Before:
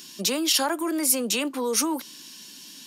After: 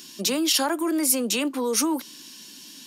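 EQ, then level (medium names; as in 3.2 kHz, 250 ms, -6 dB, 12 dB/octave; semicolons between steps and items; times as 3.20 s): peaking EQ 290 Hz +3 dB 0.95 oct; hum notches 60/120/180 Hz; 0.0 dB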